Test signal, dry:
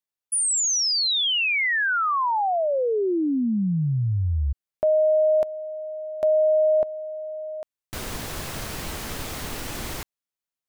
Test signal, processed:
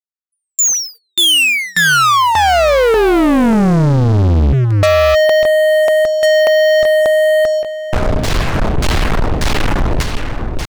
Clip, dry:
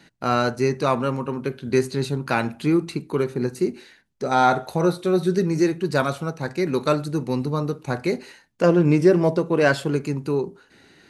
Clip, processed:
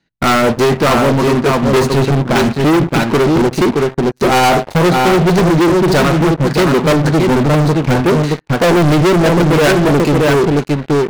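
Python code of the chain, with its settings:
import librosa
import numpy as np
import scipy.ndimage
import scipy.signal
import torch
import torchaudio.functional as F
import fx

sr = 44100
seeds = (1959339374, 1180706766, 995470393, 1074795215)

p1 = fx.low_shelf(x, sr, hz=94.0, db=9.5)
p2 = p1 + fx.echo_single(p1, sr, ms=622, db=-6.5, dry=0)
p3 = fx.dynamic_eq(p2, sr, hz=120.0, q=3.9, threshold_db=-37.0, ratio=6.0, max_db=-4)
p4 = fx.transient(p3, sr, attack_db=7, sustain_db=2)
p5 = fx.level_steps(p4, sr, step_db=14)
p6 = p4 + F.gain(torch.from_numpy(p5), -2.0).numpy()
p7 = fx.filter_lfo_lowpass(p6, sr, shape='saw_down', hz=1.7, low_hz=510.0, high_hz=6800.0, q=0.98)
p8 = fx.leveller(p7, sr, passes=5)
p9 = 10.0 ** (-8.5 / 20.0) * np.tanh(p8 / 10.0 ** (-8.5 / 20.0))
y = fx.upward_expand(p9, sr, threshold_db=-28.0, expansion=1.5)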